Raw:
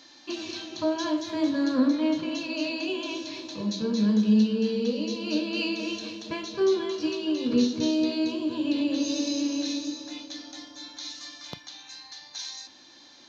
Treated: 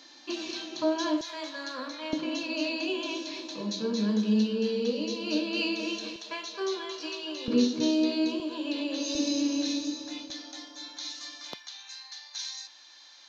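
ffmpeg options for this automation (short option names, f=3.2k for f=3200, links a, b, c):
-af "asetnsamples=n=441:p=0,asendcmd='1.21 highpass f 900;2.13 highpass f 250;6.16 highpass f 640;7.48 highpass f 190;8.4 highpass f 410;9.15 highpass f 96;10.3 highpass f 290;11.54 highpass f 950',highpass=220"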